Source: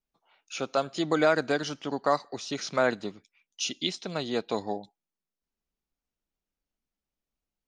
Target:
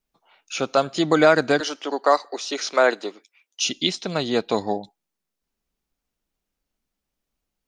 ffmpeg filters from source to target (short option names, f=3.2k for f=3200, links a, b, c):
-filter_complex "[0:a]asettb=1/sr,asplit=3[a][b][c];[a]atrim=end=1.604[d];[b]atrim=start=1.6:end=3.65,asetpts=PTS-STARTPTS,afade=t=in:d=0.004:c=qsin,afade=t=out:st=2.046:d=0.004:c=qsin,highpass=f=320:w=0.5412,highpass=f=320:w=1.3066[e];[c]atrim=start=3.646[f];[d][e]acrossfade=d=0.004:c1=hsin:c2=qsin[g];[g][f]acrossfade=d=0.004:c1=qsin:c2=hsin,volume=7.5dB"